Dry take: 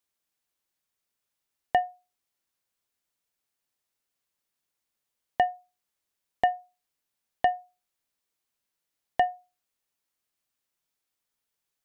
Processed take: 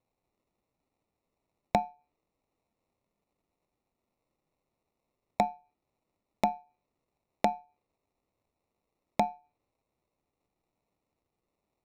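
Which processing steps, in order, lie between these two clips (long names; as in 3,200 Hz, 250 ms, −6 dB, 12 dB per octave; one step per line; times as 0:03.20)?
sample-rate reduction 1,600 Hz, jitter 0%
treble cut that deepens with the level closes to 720 Hz, closed at −28.5 dBFS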